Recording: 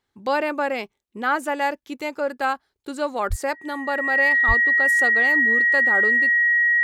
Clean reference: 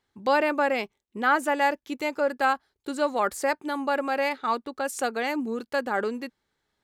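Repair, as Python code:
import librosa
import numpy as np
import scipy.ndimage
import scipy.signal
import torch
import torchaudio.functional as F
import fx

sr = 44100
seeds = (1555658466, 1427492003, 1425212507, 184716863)

y = fx.notch(x, sr, hz=1900.0, q=30.0)
y = fx.highpass(y, sr, hz=140.0, slope=24, at=(3.29, 3.41), fade=0.02)
y = fx.highpass(y, sr, hz=140.0, slope=24, at=(4.47, 4.59), fade=0.02)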